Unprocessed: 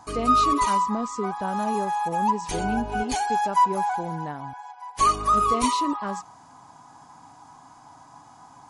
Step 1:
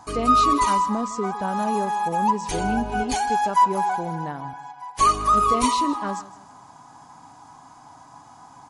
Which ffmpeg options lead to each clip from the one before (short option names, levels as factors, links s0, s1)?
-af "aecho=1:1:158|316|474:0.133|0.0493|0.0183,volume=1.26"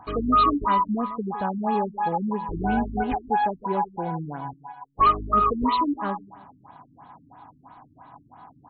-af "afftfilt=real='re*lt(b*sr/1024,310*pow(4400/310,0.5+0.5*sin(2*PI*3*pts/sr)))':imag='im*lt(b*sr/1024,310*pow(4400/310,0.5+0.5*sin(2*PI*3*pts/sr)))':win_size=1024:overlap=0.75"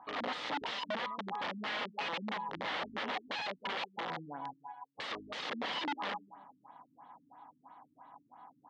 -af "aeval=exprs='(mod(12.6*val(0)+1,2)-1)/12.6':c=same,highpass=340,equalizer=f=380:t=q:w=4:g=-9,equalizer=f=680:t=q:w=4:g=-4,equalizer=f=1100:t=q:w=4:g=-3,equalizer=f=1500:t=q:w=4:g=-5,equalizer=f=2500:t=q:w=4:g=-7,lowpass=f=3400:w=0.5412,lowpass=f=3400:w=1.3066,volume=0.596"